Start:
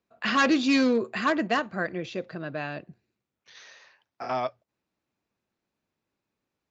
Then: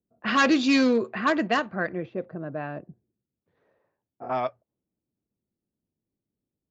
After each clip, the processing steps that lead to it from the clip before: low-pass opened by the level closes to 330 Hz, open at -19.5 dBFS; gain +1.5 dB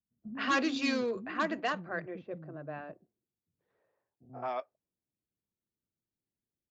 bands offset in time lows, highs 0.13 s, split 260 Hz; gain -8 dB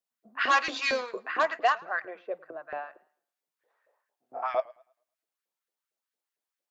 LFO high-pass saw up 4.4 Hz 460–1800 Hz; warbling echo 0.107 s, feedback 30%, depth 98 cents, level -23 dB; gain +3.5 dB

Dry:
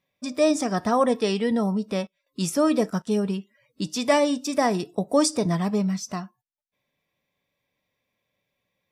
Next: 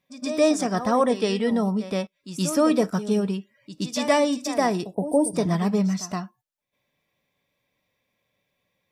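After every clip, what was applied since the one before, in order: reverse echo 0.121 s -12 dB; spectral gain 4.94–5.35, 1000–8300 Hz -27 dB; vocal rider within 4 dB 2 s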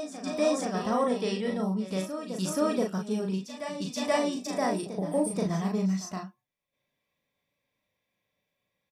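doubler 37 ms -3 dB; reverse echo 0.479 s -9.5 dB; gain -8 dB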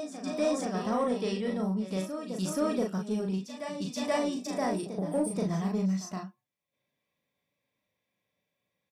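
HPF 150 Hz 6 dB/oct; low shelf 320 Hz +6 dB; in parallel at -7 dB: soft clip -26 dBFS, distortion -10 dB; on the sum: gain -5.5 dB

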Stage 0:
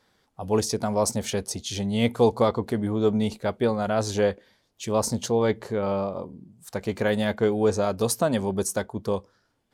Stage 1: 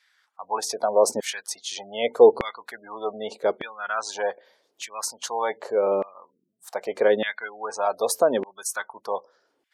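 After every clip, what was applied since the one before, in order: spectral gate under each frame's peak -30 dB strong; LFO high-pass saw down 0.83 Hz 340–2100 Hz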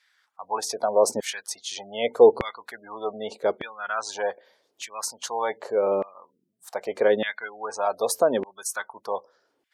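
bell 85 Hz +5 dB 1.7 oct; gain -1 dB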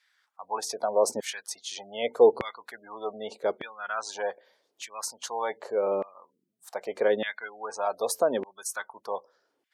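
HPF 130 Hz 6 dB/oct; gain -3.5 dB

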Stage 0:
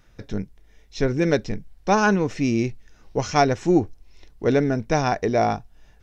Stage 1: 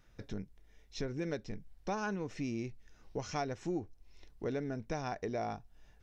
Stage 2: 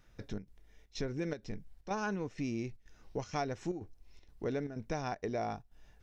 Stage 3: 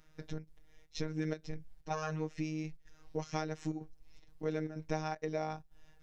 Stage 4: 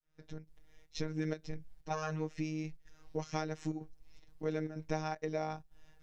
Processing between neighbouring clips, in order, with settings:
compressor 2.5:1, threshold -29 dBFS, peak gain reduction 11 dB; gain -8.5 dB
chopper 2.1 Hz, depth 60%, duty 80%; gain +1 dB
robotiser 156 Hz; gain +2 dB
opening faded in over 0.60 s

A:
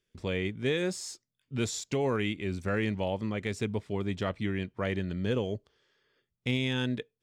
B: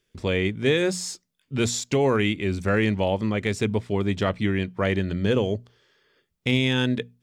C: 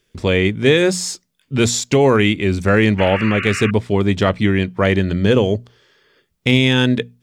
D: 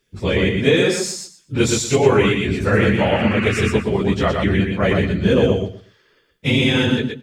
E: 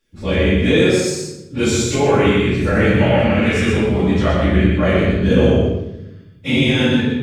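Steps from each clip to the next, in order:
notches 60/120/180/240 Hz; gain +8 dB
painted sound noise, 2.98–3.71, 1100–2900 Hz -34 dBFS; gain +8 dB
phase scrambler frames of 50 ms; on a send: feedback echo 0.12 s, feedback 19%, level -4 dB; on the sum: gain -3 dB
shoebox room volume 280 m³, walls mixed, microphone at 2.3 m; gain -6 dB

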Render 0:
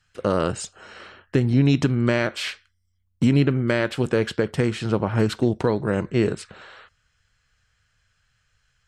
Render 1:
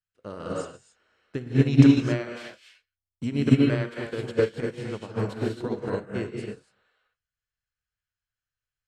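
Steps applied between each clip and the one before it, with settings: non-linear reverb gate 0.3 s rising, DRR -3 dB; upward expander 2.5:1, over -28 dBFS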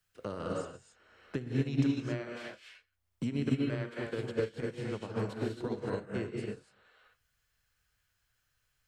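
three-band squash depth 70%; gain -7.5 dB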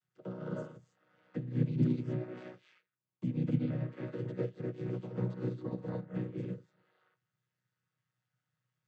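chord vocoder major triad, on B2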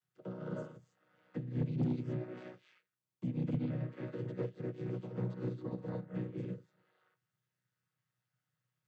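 soft clip -24.5 dBFS, distortion -16 dB; gain -1.5 dB

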